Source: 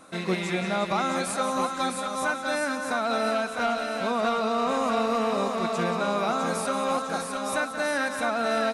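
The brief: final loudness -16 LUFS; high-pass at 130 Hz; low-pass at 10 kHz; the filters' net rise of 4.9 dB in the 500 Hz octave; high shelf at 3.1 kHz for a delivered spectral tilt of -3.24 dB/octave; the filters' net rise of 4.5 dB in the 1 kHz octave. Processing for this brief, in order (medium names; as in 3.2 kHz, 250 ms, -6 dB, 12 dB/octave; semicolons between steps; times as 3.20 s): high-pass 130 Hz; low-pass 10 kHz; peaking EQ 500 Hz +4.5 dB; peaking EQ 1 kHz +5.5 dB; treble shelf 3.1 kHz -6 dB; trim +7 dB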